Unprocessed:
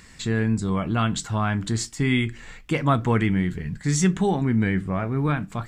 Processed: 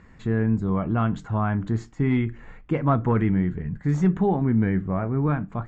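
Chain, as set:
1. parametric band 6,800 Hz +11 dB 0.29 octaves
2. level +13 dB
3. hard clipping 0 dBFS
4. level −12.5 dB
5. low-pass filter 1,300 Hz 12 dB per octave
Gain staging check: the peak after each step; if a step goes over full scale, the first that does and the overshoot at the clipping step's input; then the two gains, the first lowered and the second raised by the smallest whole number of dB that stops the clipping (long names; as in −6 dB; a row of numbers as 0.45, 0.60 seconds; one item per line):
−7.5, +5.5, 0.0, −12.5, −12.5 dBFS
step 2, 5.5 dB
step 2 +7 dB, step 4 −6.5 dB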